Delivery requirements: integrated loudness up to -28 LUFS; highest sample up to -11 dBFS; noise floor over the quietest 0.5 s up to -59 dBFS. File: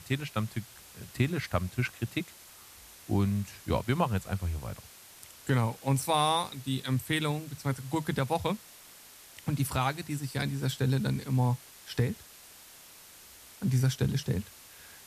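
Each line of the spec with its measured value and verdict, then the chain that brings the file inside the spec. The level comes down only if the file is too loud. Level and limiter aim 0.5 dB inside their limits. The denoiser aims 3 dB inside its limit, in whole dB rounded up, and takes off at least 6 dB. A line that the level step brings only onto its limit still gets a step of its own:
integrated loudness -31.0 LUFS: OK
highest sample -14.0 dBFS: OK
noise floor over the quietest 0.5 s -52 dBFS: fail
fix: denoiser 10 dB, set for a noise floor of -52 dBFS

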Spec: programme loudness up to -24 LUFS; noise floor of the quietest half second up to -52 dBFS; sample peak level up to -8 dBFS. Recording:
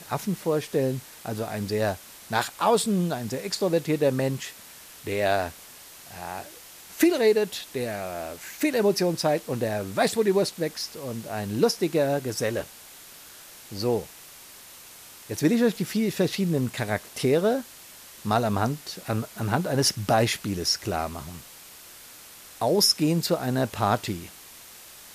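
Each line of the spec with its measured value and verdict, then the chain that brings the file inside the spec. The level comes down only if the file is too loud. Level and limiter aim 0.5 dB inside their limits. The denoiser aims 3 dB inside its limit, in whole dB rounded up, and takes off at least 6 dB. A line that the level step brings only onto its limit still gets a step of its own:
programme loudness -26.0 LUFS: OK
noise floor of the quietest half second -47 dBFS: fail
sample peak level -7.5 dBFS: fail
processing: denoiser 8 dB, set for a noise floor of -47 dBFS; limiter -8.5 dBFS

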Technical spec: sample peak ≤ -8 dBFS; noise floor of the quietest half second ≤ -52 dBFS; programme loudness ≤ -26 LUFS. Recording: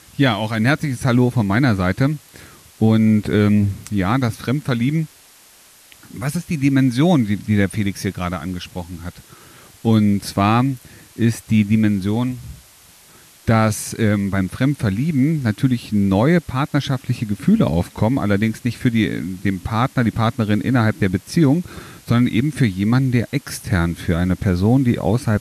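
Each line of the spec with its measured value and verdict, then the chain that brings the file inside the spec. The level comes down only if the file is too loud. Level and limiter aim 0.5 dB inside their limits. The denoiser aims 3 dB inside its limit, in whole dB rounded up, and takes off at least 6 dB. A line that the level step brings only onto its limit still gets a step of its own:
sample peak -4.0 dBFS: fail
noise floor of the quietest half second -48 dBFS: fail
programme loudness -18.5 LUFS: fail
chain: gain -8 dB

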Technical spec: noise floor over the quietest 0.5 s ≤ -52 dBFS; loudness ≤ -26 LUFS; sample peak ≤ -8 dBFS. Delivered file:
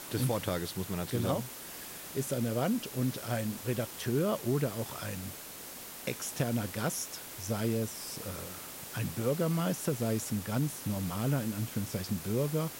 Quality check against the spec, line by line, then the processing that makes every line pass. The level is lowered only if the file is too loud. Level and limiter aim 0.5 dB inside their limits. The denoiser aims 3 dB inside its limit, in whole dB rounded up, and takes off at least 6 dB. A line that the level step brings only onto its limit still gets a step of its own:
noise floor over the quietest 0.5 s -45 dBFS: fail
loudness -34.0 LUFS: OK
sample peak -19.0 dBFS: OK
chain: denoiser 10 dB, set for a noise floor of -45 dBFS

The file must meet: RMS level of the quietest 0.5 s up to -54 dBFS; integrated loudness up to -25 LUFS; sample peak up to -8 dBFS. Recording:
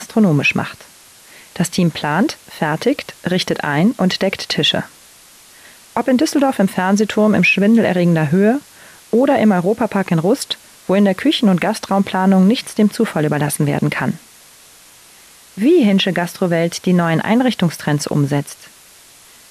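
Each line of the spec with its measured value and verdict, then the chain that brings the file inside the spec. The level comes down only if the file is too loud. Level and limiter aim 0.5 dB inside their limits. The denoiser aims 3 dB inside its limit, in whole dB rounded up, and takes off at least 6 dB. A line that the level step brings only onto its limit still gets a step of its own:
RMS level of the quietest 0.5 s -44 dBFS: fail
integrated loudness -16.0 LUFS: fail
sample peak -5.0 dBFS: fail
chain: denoiser 6 dB, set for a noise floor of -44 dBFS; gain -9.5 dB

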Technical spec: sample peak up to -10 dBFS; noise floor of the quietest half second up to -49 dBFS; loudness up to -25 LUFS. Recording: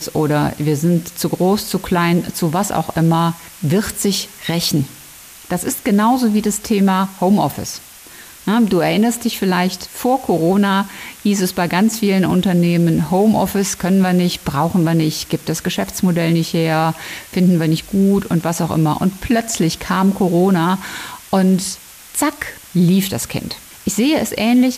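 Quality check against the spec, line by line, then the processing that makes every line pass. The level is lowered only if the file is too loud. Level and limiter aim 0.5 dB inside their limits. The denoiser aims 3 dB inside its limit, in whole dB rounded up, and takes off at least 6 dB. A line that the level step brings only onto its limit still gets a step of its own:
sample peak -5.5 dBFS: fail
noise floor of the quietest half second -39 dBFS: fail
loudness -17.0 LUFS: fail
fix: denoiser 6 dB, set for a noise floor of -39 dBFS; gain -8.5 dB

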